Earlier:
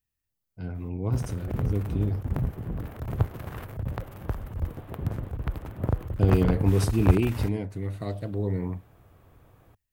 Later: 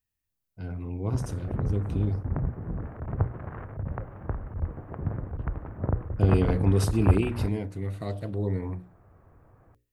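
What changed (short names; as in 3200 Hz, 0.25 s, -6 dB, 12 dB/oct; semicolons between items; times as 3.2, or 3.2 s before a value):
background: add LPF 1800 Hz 24 dB/oct; master: add notches 60/120/180/240/300/360/420/480/540 Hz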